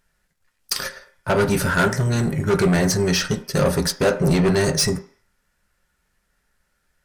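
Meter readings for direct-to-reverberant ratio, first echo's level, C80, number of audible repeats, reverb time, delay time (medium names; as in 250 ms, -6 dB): 6.0 dB, no echo, 18.0 dB, no echo, 0.45 s, no echo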